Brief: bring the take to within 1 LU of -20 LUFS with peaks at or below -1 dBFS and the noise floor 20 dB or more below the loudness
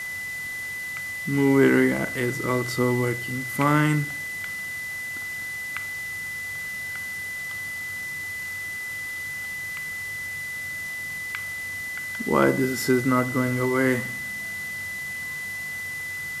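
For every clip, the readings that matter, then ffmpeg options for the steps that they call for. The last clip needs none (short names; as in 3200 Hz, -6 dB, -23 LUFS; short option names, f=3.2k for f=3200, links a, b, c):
steady tone 2000 Hz; tone level -30 dBFS; noise floor -33 dBFS; noise floor target -46 dBFS; loudness -26.0 LUFS; peak -5.0 dBFS; loudness target -20.0 LUFS
-> -af "bandreject=f=2k:w=30"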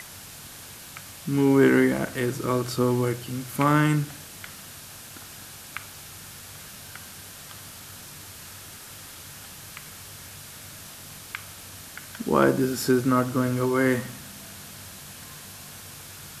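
steady tone none; noise floor -43 dBFS; noise floor target -44 dBFS
-> -af "afftdn=nr=6:nf=-43"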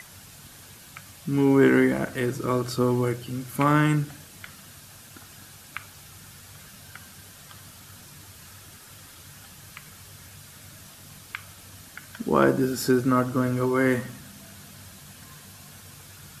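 noise floor -48 dBFS; loudness -23.5 LUFS; peak -5.5 dBFS; loudness target -20.0 LUFS
-> -af "volume=3.5dB"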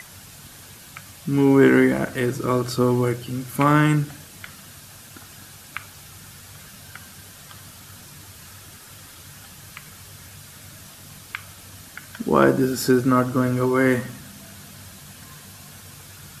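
loudness -20.0 LUFS; peak -2.0 dBFS; noise floor -44 dBFS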